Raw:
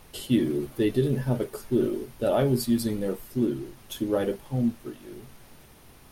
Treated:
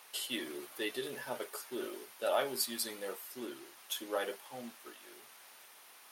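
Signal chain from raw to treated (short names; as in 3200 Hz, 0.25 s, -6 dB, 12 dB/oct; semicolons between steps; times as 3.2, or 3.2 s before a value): HPF 900 Hz 12 dB/oct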